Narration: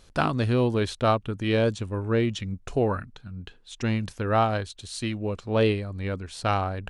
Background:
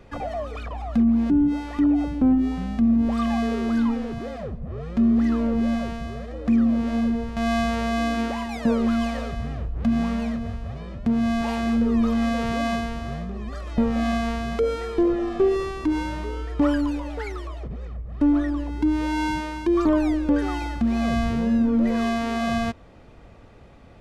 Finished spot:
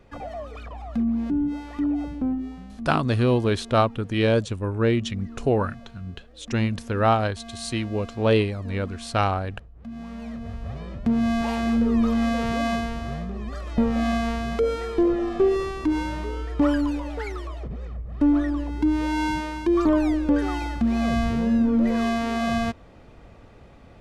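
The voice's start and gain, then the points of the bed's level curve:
2.70 s, +2.5 dB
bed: 0:02.13 −5 dB
0:03.05 −18.5 dB
0:09.78 −18.5 dB
0:10.69 0 dB

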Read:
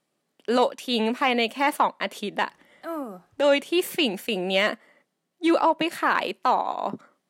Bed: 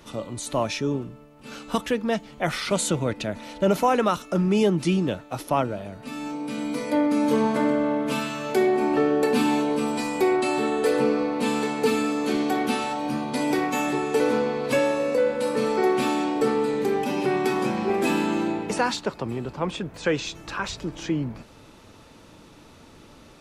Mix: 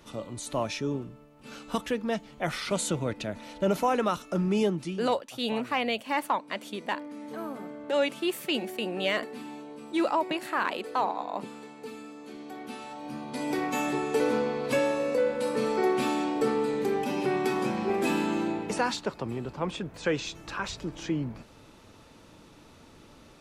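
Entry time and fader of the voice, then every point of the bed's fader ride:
4.50 s, −6.0 dB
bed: 0:04.65 −5 dB
0:05.14 −19.5 dB
0:12.35 −19.5 dB
0:13.75 −4 dB

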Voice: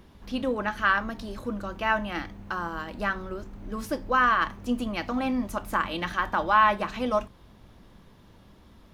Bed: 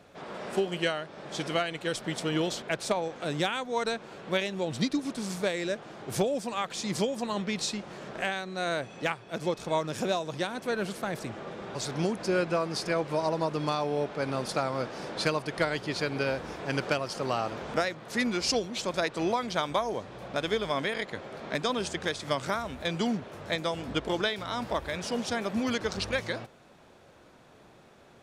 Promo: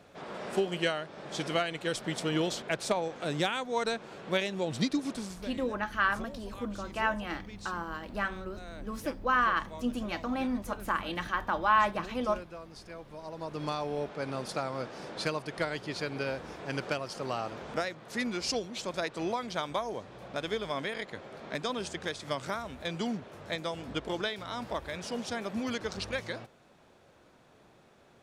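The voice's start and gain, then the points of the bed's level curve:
5.15 s, −4.5 dB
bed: 0:05.16 −1 dB
0:05.52 −17 dB
0:13.17 −17 dB
0:13.64 −4.5 dB

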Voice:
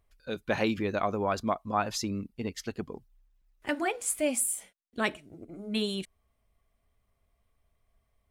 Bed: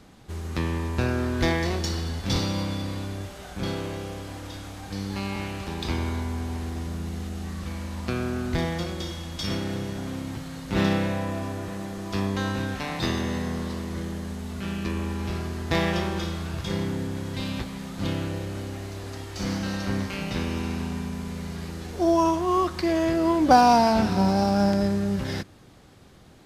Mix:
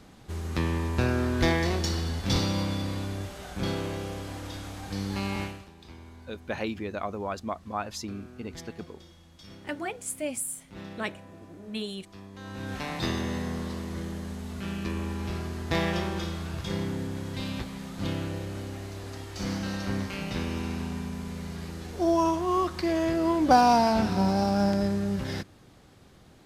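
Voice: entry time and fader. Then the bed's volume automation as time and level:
6.00 s, −4.0 dB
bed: 0:05.43 −0.5 dB
0:05.72 −19.5 dB
0:12.31 −19.5 dB
0:12.76 −3 dB

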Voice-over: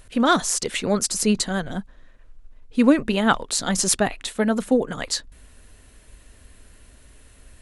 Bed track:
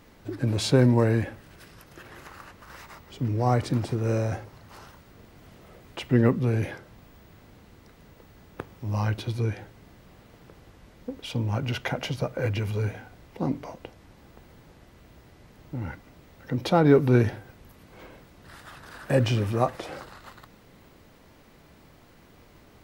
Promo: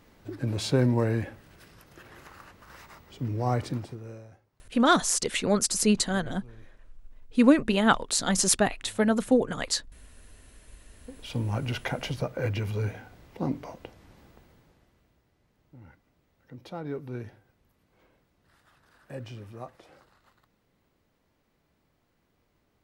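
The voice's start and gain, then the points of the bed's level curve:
4.60 s, −2.5 dB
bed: 0:03.67 −4 dB
0:04.41 −26.5 dB
0:10.56 −26.5 dB
0:11.35 −2 dB
0:14.18 −2 dB
0:15.25 −17.5 dB

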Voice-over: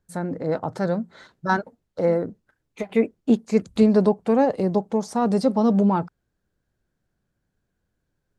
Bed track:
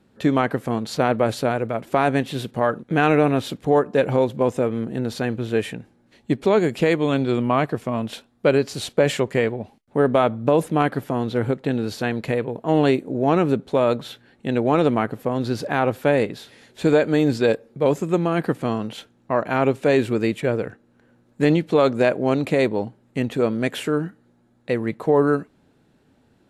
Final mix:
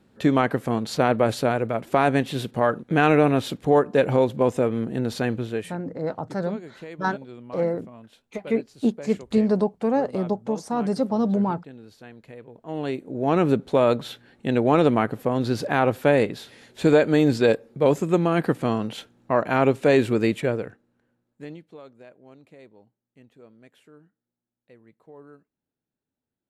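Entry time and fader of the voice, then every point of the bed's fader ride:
5.55 s, −3.5 dB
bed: 0:05.37 −0.5 dB
0:05.98 −20.5 dB
0:12.32 −20.5 dB
0:13.47 0 dB
0:20.37 0 dB
0:21.92 −29.5 dB

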